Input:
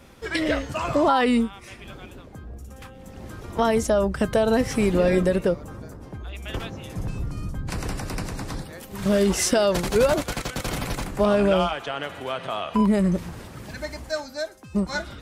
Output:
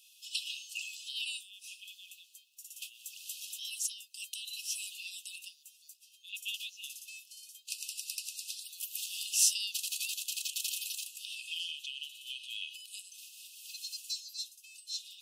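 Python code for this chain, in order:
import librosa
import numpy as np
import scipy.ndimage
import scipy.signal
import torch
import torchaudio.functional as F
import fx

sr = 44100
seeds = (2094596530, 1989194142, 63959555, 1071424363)

y = fx.recorder_agc(x, sr, target_db=-16.0, rise_db_per_s=6.1, max_gain_db=30)
y = fx.brickwall_highpass(y, sr, low_hz=2500.0)
y = fx.high_shelf(y, sr, hz=9200.0, db=7.5)
y = y * 10.0 ** (-3.5 / 20.0)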